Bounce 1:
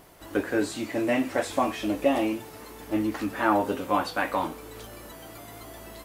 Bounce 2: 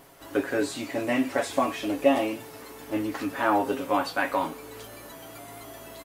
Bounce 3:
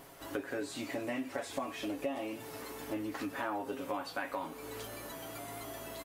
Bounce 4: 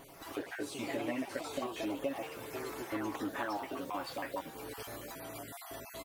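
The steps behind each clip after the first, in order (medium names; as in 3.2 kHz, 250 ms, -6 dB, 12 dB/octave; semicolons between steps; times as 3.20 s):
bass shelf 150 Hz -6 dB; comb 7.3 ms, depth 48%
compression 4:1, threshold -35 dBFS, peak gain reduction 17 dB; trim -1 dB
random holes in the spectrogram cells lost 24%; ever faster or slower copies 82 ms, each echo +3 st, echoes 3, each echo -6 dB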